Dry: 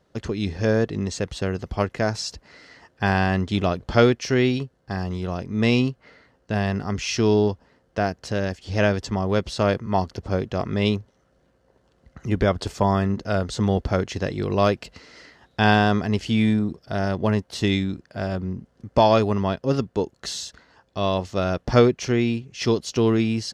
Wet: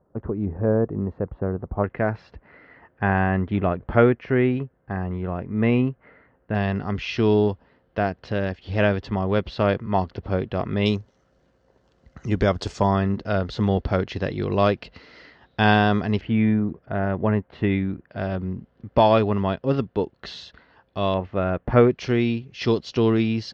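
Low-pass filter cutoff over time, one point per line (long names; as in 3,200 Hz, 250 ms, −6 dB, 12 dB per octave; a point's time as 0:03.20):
low-pass filter 24 dB per octave
1,200 Hz
from 0:01.84 2,200 Hz
from 0:06.55 3,700 Hz
from 0:10.86 7,200 Hz
from 0:12.87 4,300 Hz
from 0:16.21 2,300 Hz
from 0:18.09 3,700 Hz
from 0:21.14 2,400 Hz
from 0:21.91 4,500 Hz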